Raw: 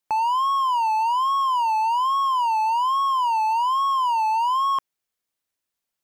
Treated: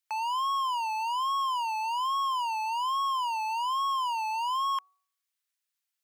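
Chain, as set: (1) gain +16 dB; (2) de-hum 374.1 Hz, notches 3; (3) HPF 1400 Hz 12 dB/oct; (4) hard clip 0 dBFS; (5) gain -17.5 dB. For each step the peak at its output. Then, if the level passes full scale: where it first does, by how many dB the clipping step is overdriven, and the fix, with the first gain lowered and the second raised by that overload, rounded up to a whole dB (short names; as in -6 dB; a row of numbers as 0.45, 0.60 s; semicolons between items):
-0.5, -0.5, -5.5, -5.5, -23.0 dBFS; no overload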